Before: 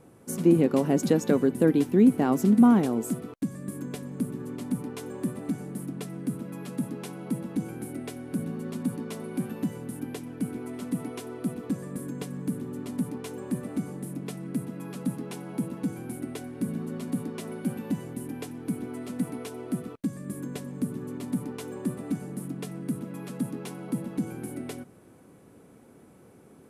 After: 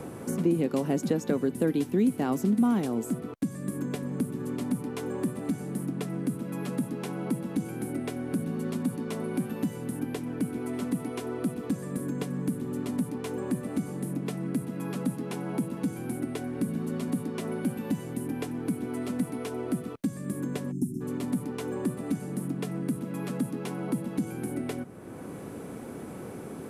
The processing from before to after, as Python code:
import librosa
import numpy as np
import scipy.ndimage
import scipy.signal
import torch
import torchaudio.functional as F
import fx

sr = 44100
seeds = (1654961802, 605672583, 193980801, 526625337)

y = fx.spec_erase(x, sr, start_s=20.72, length_s=0.29, low_hz=410.0, high_hz=5100.0)
y = fx.band_squash(y, sr, depth_pct=70)